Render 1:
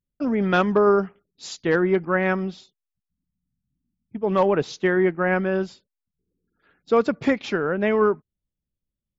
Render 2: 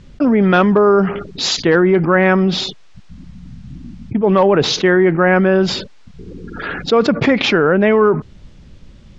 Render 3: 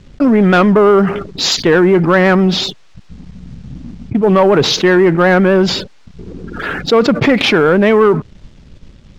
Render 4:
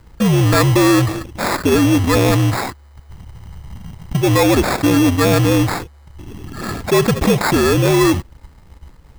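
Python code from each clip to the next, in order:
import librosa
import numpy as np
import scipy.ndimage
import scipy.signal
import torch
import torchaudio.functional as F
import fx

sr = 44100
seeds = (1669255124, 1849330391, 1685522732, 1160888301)

y1 = scipy.signal.sosfilt(scipy.signal.bessel(6, 4200.0, 'lowpass', norm='mag', fs=sr, output='sos'), x)
y1 = fx.env_flatten(y1, sr, amount_pct=70)
y1 = y1 * 10.0 ** (5.0 / 20.0)
y2 = fx.leveller(y1, sr, passes=1)
y2 = fx.vibrato(y2, sr, rate_hz=8.0, depth_cents=51.0)
y3 = fx.band_shuffle(y2, sr, order='2413')
y3 = fx.sample_hold(y3, sr, seeds[0], rate_hz=3000.0, jitter_pct=0)
y3 = y3 * 10.0 ** (-3.5 / 20.0)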